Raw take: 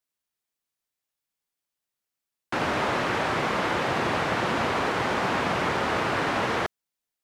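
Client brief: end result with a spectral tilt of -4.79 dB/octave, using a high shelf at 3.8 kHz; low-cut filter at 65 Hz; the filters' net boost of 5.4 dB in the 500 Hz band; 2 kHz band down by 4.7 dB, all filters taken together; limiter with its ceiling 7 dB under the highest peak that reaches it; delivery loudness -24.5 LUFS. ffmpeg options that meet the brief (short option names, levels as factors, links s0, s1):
-af "highpass=65,equalizer=f=500:t=o:g=7,equalizer=f=2000:t=o:g=-7.5,highshelf=f=3800:g=3.5,volume=1.26,alimiter=limit=0.178:level=0:latency=1"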